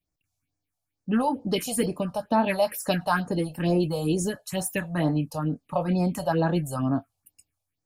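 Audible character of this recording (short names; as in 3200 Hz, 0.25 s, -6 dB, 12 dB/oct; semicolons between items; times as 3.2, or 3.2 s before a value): phasing stages 4, 2.2 Hz, lowest notch 290–3100 Hz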